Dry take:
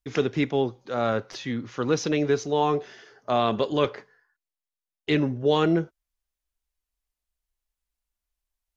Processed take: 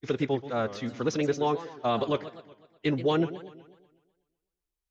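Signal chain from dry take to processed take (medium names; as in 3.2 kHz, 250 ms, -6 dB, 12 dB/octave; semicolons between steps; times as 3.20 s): time stretch by phase-locked vocoder 0.56×; modulated delay 124 ms, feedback 52%, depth 216 cents, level -14.5 dB; trim -3 dB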